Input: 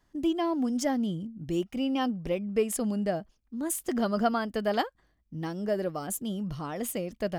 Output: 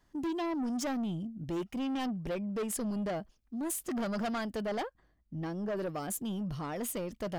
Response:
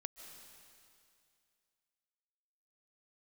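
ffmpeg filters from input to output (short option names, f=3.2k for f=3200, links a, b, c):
-filter_complex "[0:a]asettb=1/sr,asplit=3[a][b][c];[a]atrim=end=4.624[d];[b]atrim=start=4.62:end=5.77,asetpts=PTS-STARTPTS,afade=t=in:d=0.004:c=qsin,afade=t=out:st=1.146:d=0.004:c=qsin,highshelf=f=2.8k:g=-8[e];[c]atrim=start=5.766[f];[d][e]acrossfade=d=0.004:c1=hsin:c2=qsin[g];[g][f]acrossfade=d=0.004:c1=qsin:c2=hsin,asoftclip=type=tanh:threshold=-30.5dB"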